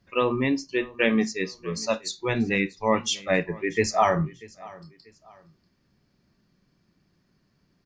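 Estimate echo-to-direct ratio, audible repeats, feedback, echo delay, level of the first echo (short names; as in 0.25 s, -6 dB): -21.0 dB, 2, 33%, 0.639 s, -21.5 dB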